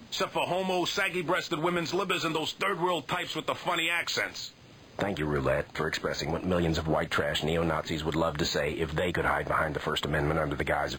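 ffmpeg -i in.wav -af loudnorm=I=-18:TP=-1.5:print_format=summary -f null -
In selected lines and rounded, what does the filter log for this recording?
Input Integrated:    -29.1 LUFS
Input True Peak:     -14.0 dBTP
Input LRA:             1.6 LU
Input Threshold:     -39.2 LUFS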